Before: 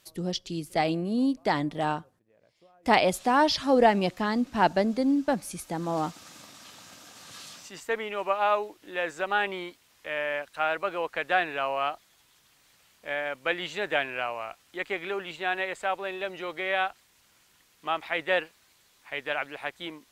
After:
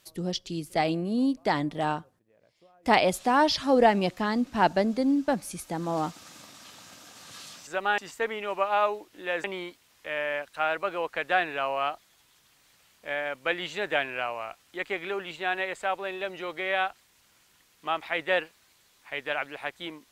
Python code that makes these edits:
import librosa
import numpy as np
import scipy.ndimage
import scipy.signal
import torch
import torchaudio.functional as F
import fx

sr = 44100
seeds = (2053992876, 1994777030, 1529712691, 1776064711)

y = fx.edit(x, sr, fx.move(start_s=9.13, length_s=0.31, to_s=7.67), tone=tone)